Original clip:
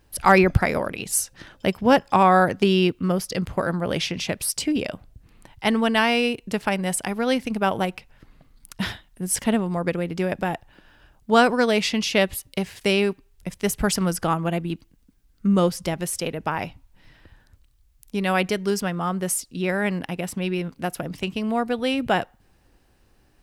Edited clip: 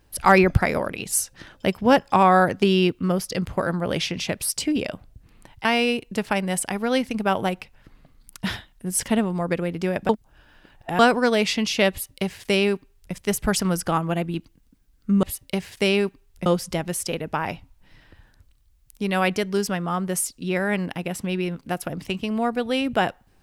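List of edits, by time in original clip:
0:05.65–0:06.01: remove
0:10.45–0:11.35: reverse
0:12.27–0:13.50: duplicate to 0:15.59

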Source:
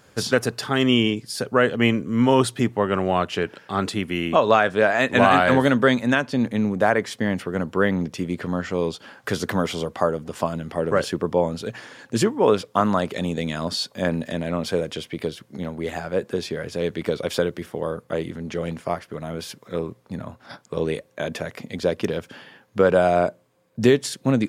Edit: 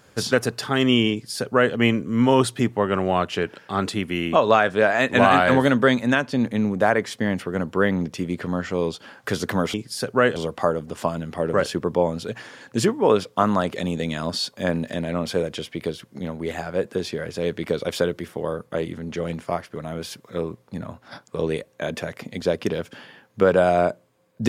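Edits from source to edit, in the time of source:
0:01.12–0:01.74: duplicate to 0:09.74

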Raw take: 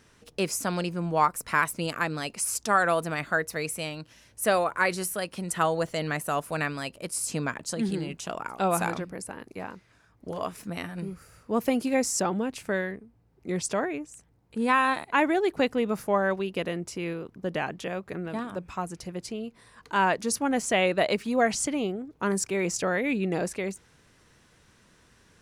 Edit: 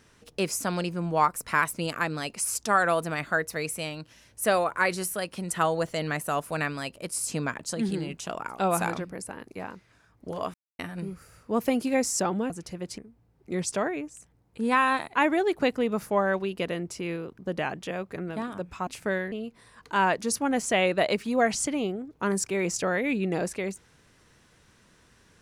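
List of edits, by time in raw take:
0:10.54–0:10.79: silence
0:12.50–0:12.95: swap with 0:18.84–0:19.32

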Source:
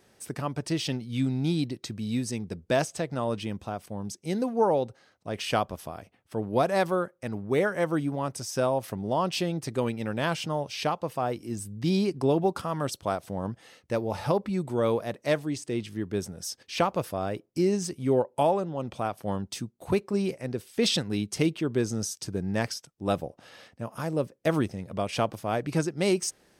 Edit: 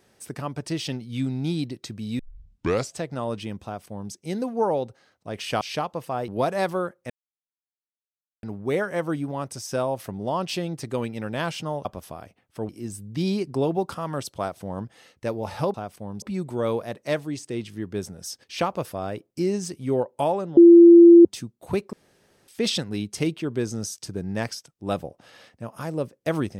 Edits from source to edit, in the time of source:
0:02.19: tape start 0.74 s
0:03.64–0:04.12: duplicate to 0:14.41
0:05.61–0:06.45: swap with 0:10.69–0:11.36
0:07.27: splice in silence 1.33 s
0:18.76–0:19.44: beep over 341 Hz −6 dBFS
0:20.12–0:20.67: fill with room tone

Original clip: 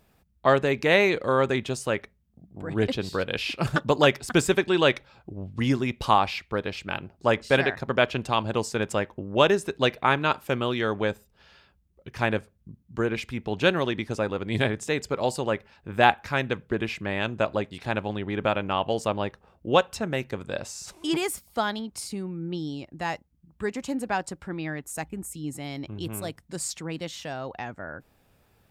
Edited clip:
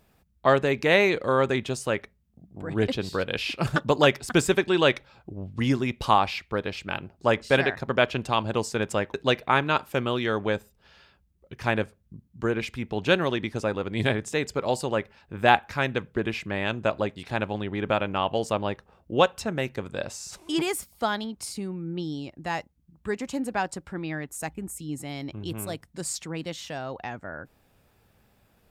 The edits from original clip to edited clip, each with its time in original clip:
0:09.14–0:09.69: remove

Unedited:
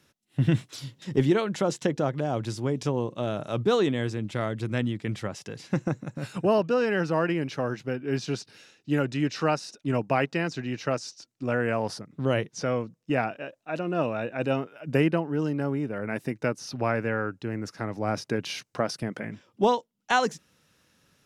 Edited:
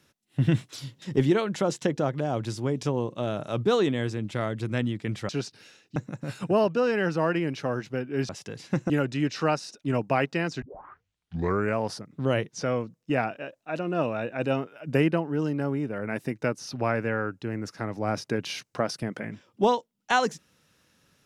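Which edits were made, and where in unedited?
0:05.29–0:05.90: swap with 0:08.23–0:08.90
0:10.62: tape start 1.15 s

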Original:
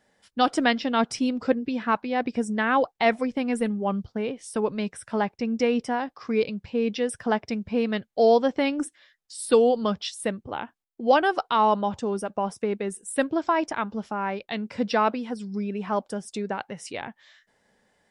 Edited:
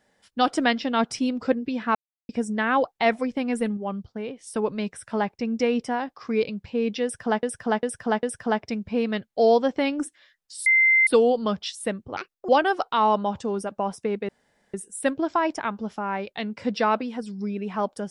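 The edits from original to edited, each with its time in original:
0:01.95–0:02.29: silence
0:03.77–0:04.47: clip gain −4 dB
0:07.03–0:07.43: repeat, 4 plays
0:09.46: insert tone 2,080 Hz −14.5 dBFS 0.41 s
0:10.56–0:11.07: play speed 161%
0:12.87: splice in room tone 0.45 s

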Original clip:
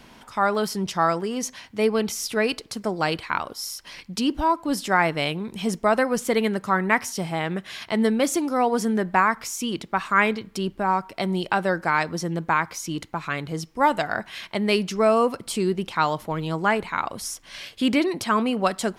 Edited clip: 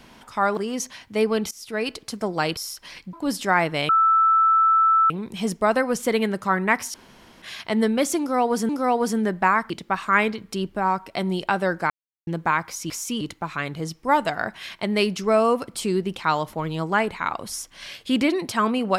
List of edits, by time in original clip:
0:00.57–0:01.20: remove
0:02.14–0:02.63: fade in linear, from −19 dB
0:03.20–0:03.59: remove
0:04.15–0:04.56: remove
0:05.32: insert tone 1,320 Hz −14 dBFS 1.21 s
0:07.16–0:07.64: fill with room tone
0:08.41–0:08.91: repeat, 2 plays
0:09.42–0:09.73: move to 0:12.93
0:11.93–0:12.30: silence

